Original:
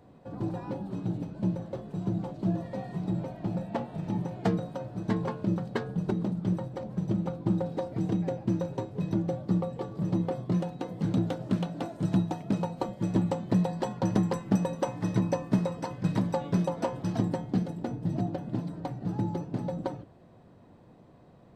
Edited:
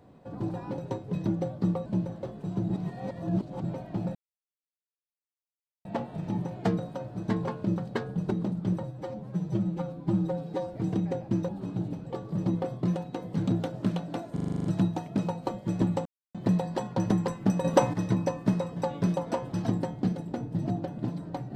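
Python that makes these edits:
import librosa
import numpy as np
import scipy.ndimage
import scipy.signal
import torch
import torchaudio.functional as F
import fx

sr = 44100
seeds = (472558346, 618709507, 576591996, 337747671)

y = fx.edit(x, sr, fx.swap(start_s=0.78, length_s=0.58, other_s=8.65, other_length_s=1.08),
    fx.reverse_span(start_s=2.2, length_s=0.94),
    fx.insert_silence(at_s=3.65, length_s=1.7),
    fx.stretch_span(start_s=6.63, length_s=1.27, factor=1.5),
    fx.stutter(start_s=11.99, slice_s=0.04, count=9),
    fx.insert_silence(at_s=13.4, length_s=0.29),
    fx.clip_gain(start_s=14.7, length_s=0.29, db=9.0),
    fx.cut(start_s=15.82, length_s=0.45), tone=tone)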